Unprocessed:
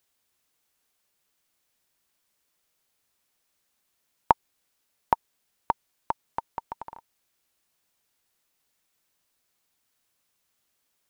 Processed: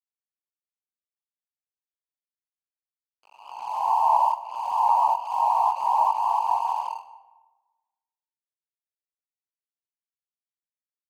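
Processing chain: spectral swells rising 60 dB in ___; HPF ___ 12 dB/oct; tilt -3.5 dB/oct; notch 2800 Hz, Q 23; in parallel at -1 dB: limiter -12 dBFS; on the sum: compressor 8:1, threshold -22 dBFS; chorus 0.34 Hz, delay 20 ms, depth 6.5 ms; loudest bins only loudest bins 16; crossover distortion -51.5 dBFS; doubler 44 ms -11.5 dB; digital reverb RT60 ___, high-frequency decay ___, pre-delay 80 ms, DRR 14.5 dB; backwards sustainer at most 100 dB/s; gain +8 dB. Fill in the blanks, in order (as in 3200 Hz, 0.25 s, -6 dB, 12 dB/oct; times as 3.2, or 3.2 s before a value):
1.37 s, 760 Hz, 1.2 s, 0.55×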